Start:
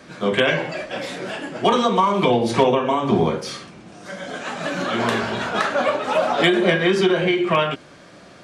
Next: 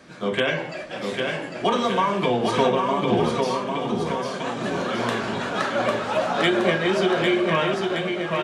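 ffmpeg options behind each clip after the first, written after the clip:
ffmpeg -i in.wav -af "aecho=1:1:800|1520|2168|2751|3276:0.631|0.398|0.251|0.158|0.1,volume=-4.5dB" out.wav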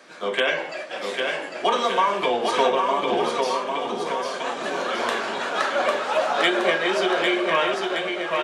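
ffmpeg -i in.wav -af "highpass=440,volume=2dB" out.wav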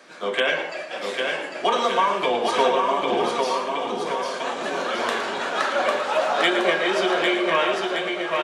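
ffmpeg -i in.wav -af "aecho=1:1:113:0.299" out.wav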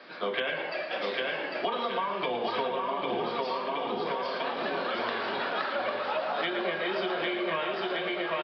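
ffmpeg -i in.wav -filter_complex "[0:a]aresample=11025,aresample=44100,acrossover=split=150[link_01][link_02];[link_02]acompressor=threshold=-28dB:ratio=6[link_03];[link_01][link_03]amix=inputs=2:normalize=0" out.wav

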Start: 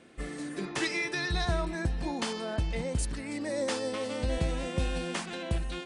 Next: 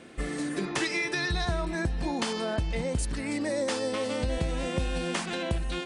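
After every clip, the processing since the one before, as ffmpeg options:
ffmpeg -i in.wav -af "acompressor=threshold=-35dB:ratio=2.5,volume=7dB" out.wav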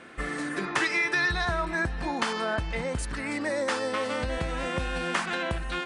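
ffmpeg -i in.wav -af "equalizer=frequency=1400:width_type=o:width=1.7:gain=11.5,volume=-3dB" out.wav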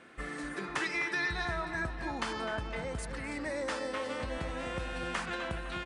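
ffmpeg -i in.wav -filter_complex "[0:a]asplit=2[link_01][link_02];[link_02]adelay=254,lowpass=frequency=2800:poles=1,volume=-8dB,asplit=2[link_03][link_04];[link_04]adelay=254,lowpass=frequency=2800:poles=1,volume=0.54,asplit=2[link_05][link_06];[link_06]adelay=254,lowpass=frequency=2800:poles=1,volume=0.54,asplit=2[link_07][link_08];[link_08]adelay=254,lowpass=frequency=2800:poles=1,volume=0.54,asplit=2[link_09][link_10];[link_10]adelay=254,lowpass=frequency=2800:poles=1,volume=0.54,asplit=2[link_11][link_12];[link_12]adelay=254,lowpass=frequency=2800:poles=1,volume=0.54[link_13];[link_01][link_03][link_05][link_07][link_09][link_11][link_13]amix=inputs=7:normalize=0,volume=-7.5dB" out.wav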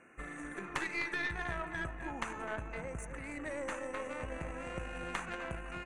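ffmpeg -i in.wav -af "afftfilt=real='re*(1-between(b*sr/4096,2900,5800))':imag='im*(1-between(b*sr/4096,2900,5800))':win_size=4096:overlap=0.75,aeval=exprs='0.106*(cos(1*acos(clip(val(0)/0.106,-1,1)))-cos(1*PI/2))+0.0299*(cos(2*acos(clip(val(0)/0.106,-1,1)))-cos(2*PI/2))+0.015*(cos(3*acos(clip(val(0)/0.106,-1,1)))-cos(3*PI/2))':channel_layout=same,bandreject=frequency=219:width_type=h:width=4,bandreject=frequency=438:width_type=h:width=4,bandreject=frequency=657:width_type=h:width=4,bandreject=frequency=876:width_type=h:width=4,bandreject=frequency=1095:width_type=h:width=4,bandreject=frequency=1314:width_type=h:width=4,bandreject=frequency=1533:width_type=h:width=4,bandreject=frequency=1752:width_type=h:width=4,bandreject=frequency=1971:width_type=h:width=4,bandreject=frequency=2190:width_type=h:width=4,bandreject=frequency=2409:width_type=h:width=4,bandreject=frequency=2628:width_type=h:width=4,bandreject=frequency=2847:width_type=h:width=4,bandreject=frequency=3066:width_type=h:width=4,bandreject=frequency=3285:width_type=h:width=4,bandreject=frequency=3504:width_type=h:width=4,bandreject=frequency=3723:width_type=h:width=4,bandreject=frequency=3942:width_type=h:width=4,bandreject=frequency=4161:width_type=h:width=4,bandreject=frequency=4380:width_type=h:width=4,bandreject=frequency=4599:width_type=h:width=4,bandreject=frequency=4818:width_type=h:width=4,bandreject=frequency=5037:width_type=h:width=4,bandreject=frequency=5256:width_type=h:width=4,bandreject=frequency=5475:width_type=h:width=4,bandreject=frequency=5694:width_type=h:width=4,bandreject=frequency=5913:width_type=h:width=4,bandreject=frequency=6132:width_type=h:width=4,bandreject=frequency=6351:width_type=h:width=4,bandreject=frequency=6570:width_type=h:width=4,bandreject=frequency=6789:width_type=h:width=4" out.wav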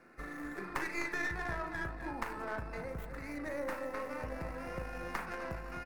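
ffmpeg -i in.wav -filter_complex "[0:a]acrossover=split=150|2600[link_01][link_02][link_03];[link_02]asplit=2[link_04][link_05];[link_05]adelay=38,volume=-6dB[link_06];[link_04][link_06]amix=inputs=2:normalize=0[link_07];[link_03]aeval=exprs='abs(val(0))':channel_layout=same[link_08];[link_01][link_07][link_08]amix=inputs=3:normalize=0" out.wav

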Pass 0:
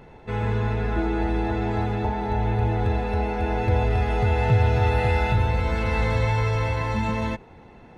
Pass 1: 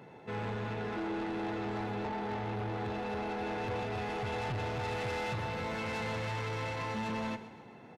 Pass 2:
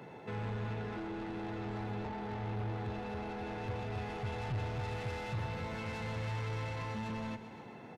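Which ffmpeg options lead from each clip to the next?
ffmpeg -i in.wav -af "highpass=frequency=120:width=0.5412,highpass=frequency=120:width=1.3066,asoftclip=type=tanh:threshold=-29dB,aecho=1:1:131|262|393|524|655:0.2|0.0998|0.0499|0.0249|0.0125,volume=-4dB" out.wav
ffmpeg -i in.wav -filter_complex "[0:a]acrossover=split=160[link_01][link_02];[link_02]acompressor=threshold=-46dB:ratio=2.5[link_03];[link_01][link_03]amix=inputs=2:normalize=0,volume=2.5dB" out.wav

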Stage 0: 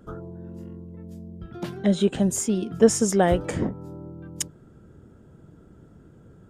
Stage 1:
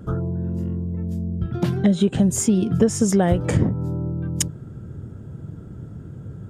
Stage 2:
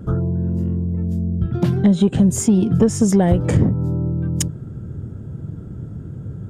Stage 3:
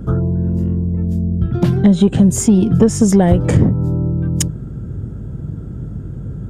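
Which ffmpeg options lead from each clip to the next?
ffmpeg -i in.wav -af "equalizer=frequency=110:width_type=o:width=1.6:gain=12.5,acompressor=threshold=-20dB:ratio=6,volume=6dB" out.wav
ffmpeg -i in.wav -af "lowshelf=frequency=470:gain=5.5,asoftclip=type=tanh:threshold=-4dB" out.wav
ffmpeg -i in.wav -af "aeval=exprs='val(0)+0.0178*(sin(2*PI*50*n/s)+sin(2*PI*2*50*n/s)/2+sin(2*PI*3*50*n/s)/3+sin(2*PI*4*50*n/s)/4+sin(2*PI*5*50*n/s)/5)':channel_layout=same,volume=3.5dB" out.wav

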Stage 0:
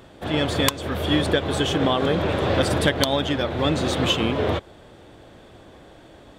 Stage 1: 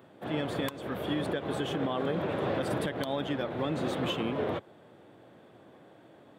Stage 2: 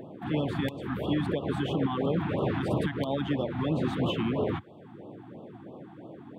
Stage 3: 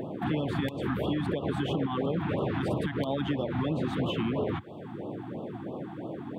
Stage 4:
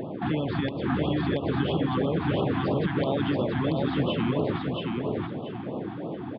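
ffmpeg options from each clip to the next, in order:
ffmpeg -i in.wav -af "highpass=frequency=120:width=0.5412,highpass=frequency=120:width=1.3066,equalizer=frequency=5800:width_type=o:width=1.8:gain=-10.5,alimiter=limit=-14dB:level=0:latency=1:release=73,volume=-7dB" out.wav
ffmpeg -i in.wav -filter_complex "[0:a]bass=frequency=250:gain=5,treble=frequency=4000:gain=-10,acrossover=split=120|1000[link_01][link_02][link_03];[link_02]acompressor=mode=upward:threshold=-37dB:ratio=2.5[link_04];[link_01][link_04][link_03]amix=inputs=3:normalize=0,afftfilt=real='re*(1-between(b*sr/1024,460*pow(1900/460,0.5+0.5*sin(2*PI*3*pts/sr))/1.41,460*pow(1900/460,0.5+0.5*sin(2*PI*3*pts/sr))*1.41))':imag='im*(1-between(b*sr/1024,460*pow(1900/460,0.5+0.5*sin(2*PI*3*pts/sr))/1.41,460*pow(1900/460,0.5+0.5*sin(2*PI*3*pts/sr))*1.41))':win_size=1024:overlap=0.75,volume=2dB" out.wav
ffmpeg -i in.wav -af "acompressor=threshold=-34dB:ratio=6,volume=7.5dB" out.wav
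ffmpeg -i in.wav -filter_complex "[0:a]asplit=2[link_01][link_02];[link_02]aecho=0:1:680|1360|2040|2720:0.708|0.177|0.0442|0.0111[link_03];[link_01][link_03]amix=inputs=2:normalize=0,aresample=11025,aresample=44100,volume=2dB" out.wav

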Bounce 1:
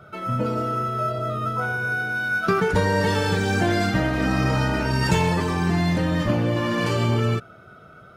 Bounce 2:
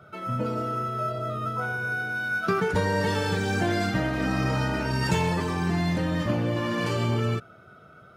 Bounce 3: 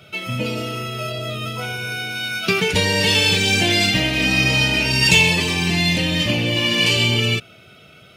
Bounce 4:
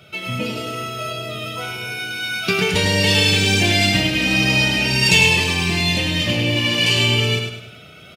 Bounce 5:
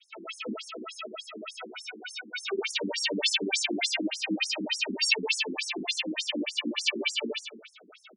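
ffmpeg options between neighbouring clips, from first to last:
ffmpeg -i in.wav -af "highpass=59,volume=-4dB" out.wav
ffmpeg -i in.wav -af "highshelf=frequency=1900:width_type=q:width=3:gain=11,volume=4.5dB" out.wav
ffmpeg -i in.wav -af "areverse,acompressor=mode=upward:threshold=-36dB:ratio=2.5,areverse,aecho=1:1:102|204|306|408|510:0.531|0.207|0.0807|0.0315|0.0123,volume=-1dB" out.wav
ffmpeg -i in.wav -af "adynamicequalizer=threshold=0.0178:dfrequency=1200:dqfactor=0.82:tfrequency=1200:tqfactor=0.82:attack=5:release=100:ratio=0.375:range=2.5:mode=cutabove:tftype=bell,afftfilt=real='re*between(b*sr/1024,260*pow(7800/260,0.5+0.5*sin(2*PI*3.4*pts/sr))/1.41,260*pow(7800/260,0.5+0.5*sin(2*PI*3.4*pts/sr))*1.41)':imag='im*between(b*sr/1024,260*pow(7800/260,0.5+0.5*sin(2*PI*3.4*pts/sr))/1.41,260*pow(7800/260,0.5+0.5*sin(2*PI*3.4*pts/sr))*1.41)':win_size=1024:overlap=0.75,volume=-2dB" out.wav

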